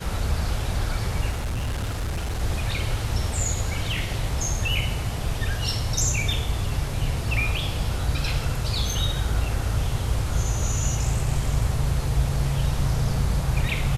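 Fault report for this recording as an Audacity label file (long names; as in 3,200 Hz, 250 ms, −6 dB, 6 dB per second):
1.300000	2.410000	clipping −23.5 dBFS
3.970000	3.970000	drop-out 2.5 ms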